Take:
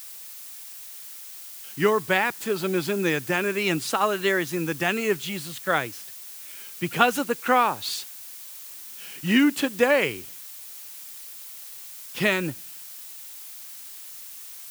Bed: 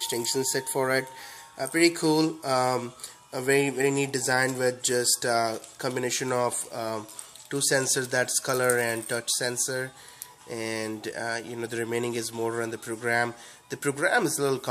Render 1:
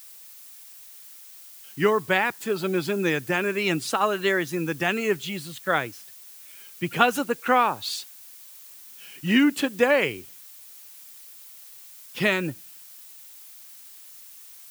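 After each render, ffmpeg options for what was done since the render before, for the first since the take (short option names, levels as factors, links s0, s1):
-af "afftdn=nr=6:nf=-41"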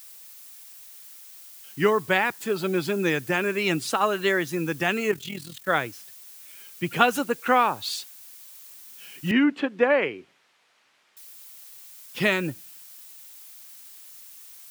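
-filter_complex "[0:a]asettb=1/sr,asplit=3[s0][s1][s2];[s0]atrim=end=5.114[s3];[s1]atrim=start=5.11:end=5.68,asetpts=PTS-STARTPTS,afade=t=in:d=0.004:c=qsin,afade=t=out:st=0.566:d=0.004:c=qsin,tremolo=f=41:d=0.75[s4];[s2]atrim=start=5.676[s5];[s3][s4]acrossfade=d=0.004:c1=hsin:c2=qsin[s6];[s6][s5]acrossfade=d=0.004:c1=qsin:c2=hsin,asettb=1/sr,asplit=3[s7][s8][s9];[s7]atrim=end=9.314[s10];[s8]atrim=start=9.31:end=11.17,asetpts=PTS-STARTPTS,afade=t=in:d=0.004:c=qsin,afade=t=out:st=1.856:d=0.004:c=qsin,highpass=210,lowpass=2300[s11];[s9]atrim=start=11.166[s12];[s10][s11]acrossfade=d=0.004:c1=hsin:c2=qsin[s13];[s13][s12]acrossfade=d=0.004:c1=qsin:c2=hsin"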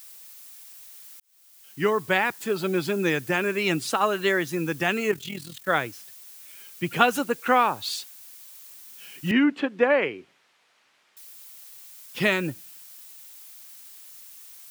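-filter_complex "[0:a]asplit=2[s0][s1];[s0]atrim=end=1.2,asetpts=PTS-STARTPTS,afade=t=out:st=1.196:d=0.004:c=hsin[s2];[s1]atrim=start=1.2,asetpts=PTS-STARTPTS,afade=t=in:d=1.2:c=qsin[s3];[s2][s3]concat=n=2:v=0:a=1"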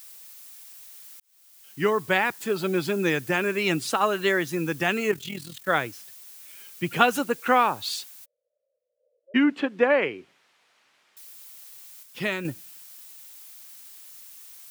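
-filter_complex "[0:a]asplit=3[s0][s1][s2];[s0]afade=t=out:st=8.24:d=0.02[s3];[s1]asuperpass=centerf=540:order=8:qfactor=3.8,afade=t=in:st=8.24:d=0.02,afade=t=out:st=9.34:d=0.02[s4];[s2]afade=t=in:st=9.34:d=0.02[s5];[s3][s4][s5]amix=inputs=3:normalize=0,asplit=3[s6][s7][s8];[s6]atrim=end=12.032[s9];[s7]atrim=start=12.028:end=12.452,asetpts=PTS-STARTPTS,volume=0.531[s10];[s8]atrim=start=12.448[s11];[s9][s10]acrossfade=d=0.004:c1=hsin:c2=hsin[s12];[s12][s11]acrossfade=d=0.004:c1=hsin:c2=hsin"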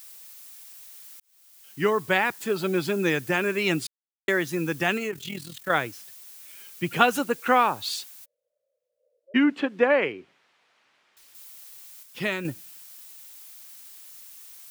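-filter_complex "[0:a]asettb=1/sr,asplit=3[s0][s1][s2];[s0]atrim=end=4.974[s3];[s1]atrim=start=4.97:end=5.7,asetpts=PTS-STARTPTS,afade=t=in:d=0.004:c=qsin,afade=t=out:st=0.726:d=0.004:c=qsin,acompressor=threshold=0.0501:ratio=6:attack=3.2:release=140:knee=1:detection=peak[s4];[s2]atrim=start=5.696[s5];[s3][s4]acrossfade=d=0.004:c1=hsin:c2=qsin[s6];[s6][s5]acrossfade=d=0.004:c1=qsin:c2=hsin,asettb=1/sr,asplit=3[s7][s8][s9];[s7]atrim=end=10.124[s10];[s8]atrim=start=10.12:end=11.35,asetpts=PTS-STARTPTS,afade=t=in:d=0.004:c=qsin,afade=t=out:st=1.226:d=0.004:c=qsin,highshelf=f=6800:g=-11[s11];[s9]atrim=start=11.346[s12];[s10][s11]acrossfade=d=0.004:c1=hsin:c2=qsin[s13];[s13][s12]acrossfade=d=0.004:c1=qsin:c2=hsin,asplit=3[s14][s15][s16];[s14]atrim=end=3.87,asetpts=PTS-STARTPTS,afade=t=out:st=3.866:d=0.004:c=hsin[s17];[s15]atrim=start=3.87:end=4.28,asetpts=PTS-STARTPTS,volume=0[s18];[s16]atrim=start=4.28,asetpts=PTS-STARTPTS,afade=t=in:d=0.004:c=hsin[s19];[s17][s18][s19]concat=n=3:v=0:a=1"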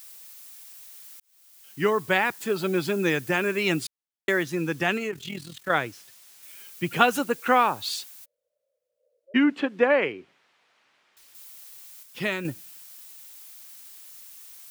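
-filter_complex "[0:a]asettb=1/sr,asplit=3[s0][s1][s2];[s0]atrim=end=4.434[s3];[s1]atrim=start=4.43:end=6.43,asetpts=PTS-STARTPTS,afade=t=in:d=0.004:c=qsin,afade=t=out:st=1.996:d=0.004:c=qsin,highshelf=f=9700:g=-8.5[s4];[s2]atrim=start=6.426[s5];[s3][s4]acrossfade=d=0.004:c1=hsin:c2=qsin[s6];[s6][s5]acrossfade=d=0.004:c1=qsin:c2=hsin"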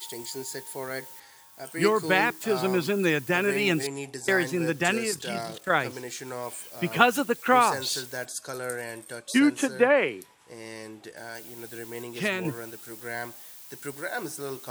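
-filter_complex "[1:a]volume=0.335[s0];[0:a][s0]amix=inputs=2:normalize=0"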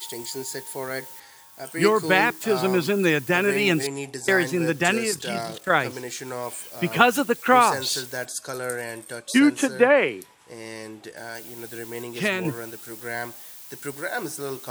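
-af "volume=1.5,alimiter=limit=0.891:level=0:latency=1"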